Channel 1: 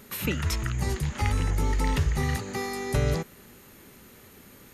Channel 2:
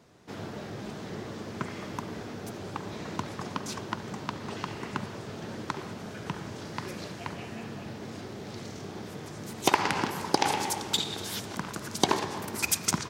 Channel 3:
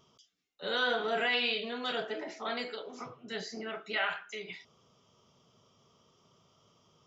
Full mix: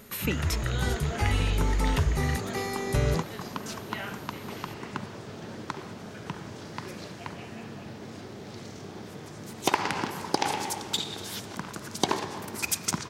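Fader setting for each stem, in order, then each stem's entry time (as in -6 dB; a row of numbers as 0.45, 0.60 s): -0.5, -1.5, -7.0 dB; 0.00, 0.00, 0.00 s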